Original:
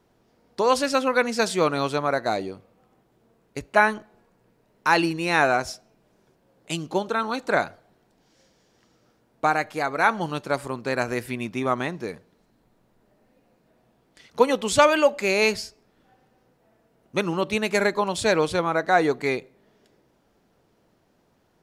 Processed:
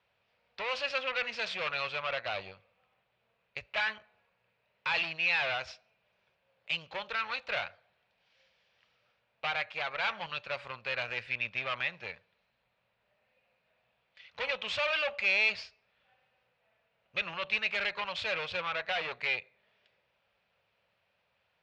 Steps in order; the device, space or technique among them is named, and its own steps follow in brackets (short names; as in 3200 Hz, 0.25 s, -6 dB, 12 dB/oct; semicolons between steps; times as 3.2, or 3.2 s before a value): scooped metal amplifier (tube stage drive 26 dB, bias 0.75; speaker cabinet 94–3800 Hz, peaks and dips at 140 Hz -4 dB, 550 Hz +8 dB, 2500 Hz +8 dB; passive tone stack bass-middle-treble 10-0-10); gain +4.5 dB